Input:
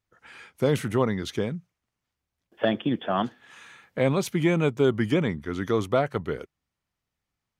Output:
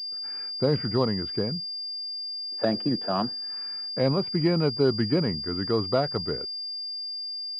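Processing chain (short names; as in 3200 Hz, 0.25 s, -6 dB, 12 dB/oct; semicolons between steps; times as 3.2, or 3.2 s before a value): air absorption 400 m; pulse-width modulation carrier 4800 Hz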